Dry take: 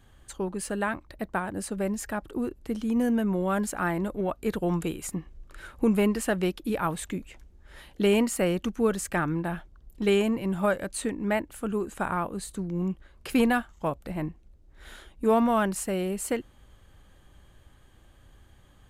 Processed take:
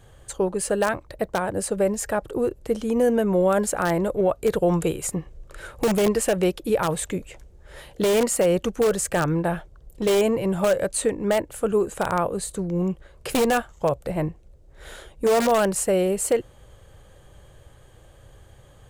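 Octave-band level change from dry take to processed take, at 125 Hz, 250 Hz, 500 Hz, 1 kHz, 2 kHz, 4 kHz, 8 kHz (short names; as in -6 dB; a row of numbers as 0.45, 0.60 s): +4.0, +1.5, +7.5, +4.0, +2.5, +5.0, +8.5 dB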